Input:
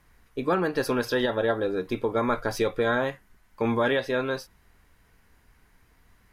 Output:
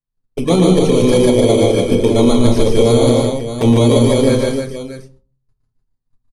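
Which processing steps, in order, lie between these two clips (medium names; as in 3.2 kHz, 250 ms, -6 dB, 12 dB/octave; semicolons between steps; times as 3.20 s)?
bit-reversed sample order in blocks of 16 samples; low-pass 9.4 kHz 24 dB/octave; band-stop 1.5 kHz, Q 15; gate -52 dBFS, range -40 dB; bass shelf 310 Hz +10.5 dB; hum notches 50/100/150/200/250/300/350/400 Hz; touch-sensitive flanger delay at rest 7.7 ms, full sweep at -19.5 dBFS; multi-tap echo 115/147/197/301/617 ms -6/-3/-11/-5/-11 dB; on a send at -8 dB: reverberation RT60 0.40 s, pre-delay 5 ms; on the sum: loudness maximiser +9.5 dB; trim -1 dB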